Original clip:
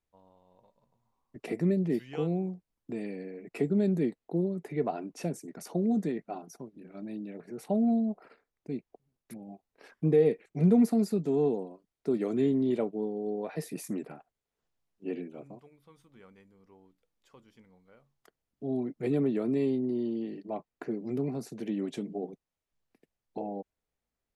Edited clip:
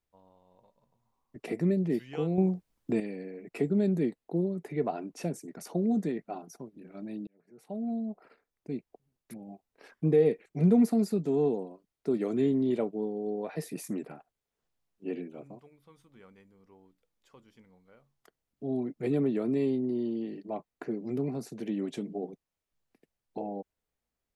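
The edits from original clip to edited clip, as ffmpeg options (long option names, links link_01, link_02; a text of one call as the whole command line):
ffmpeg -i in.wav -filter_complex "[0:a]asplit=4[link_01][link_02][link_03][link_04];[link_01]atrim=end=2.382[link_05];[link_02]atrim=start=2.378:end=3.002,asetpts=PTS-STARTPTS,volume=8dB[link_06];[link_03]atrim=start=2.998:end=7.27,asetpts=PTS-STARTPTS,afade=type=out:start_time=4.268:duration=0.004:curve=hsin[link_07];[link_04]atrim=start=7.27,asetpts=PTS-STARTPTS,afade=type=in:duration=1.43[link_08];[link_05][link_06]acrossfade=duration=0.004:curve1=hsin:curve2=hsin[link_09];[link_07][link_08]concat=n=2:v=0:a=1[link_10];[link_09][link_10]acrossfade=duration=0.004:curve1=hsin:curve2=hsin" out.wav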